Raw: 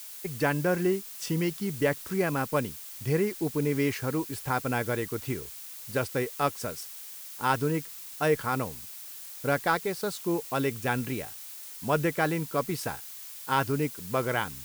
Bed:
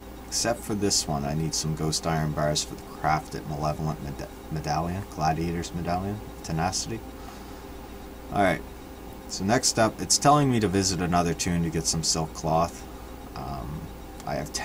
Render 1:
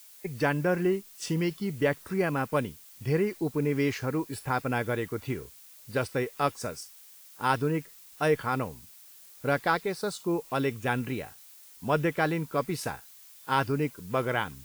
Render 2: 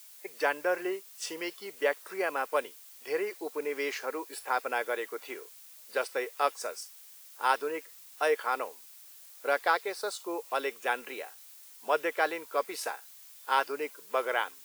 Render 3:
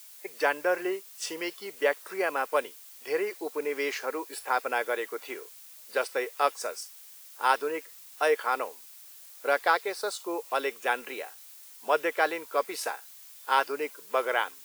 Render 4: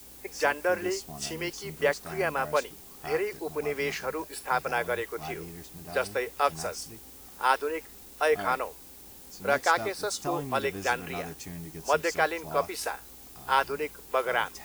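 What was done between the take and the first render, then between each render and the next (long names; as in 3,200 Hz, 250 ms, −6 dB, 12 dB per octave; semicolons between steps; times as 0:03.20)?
noise reduction from a noise print 9 dB
high-pass filter 440 Hz 24 dB per octave
level +2.5 dB
mix in bed −15 dB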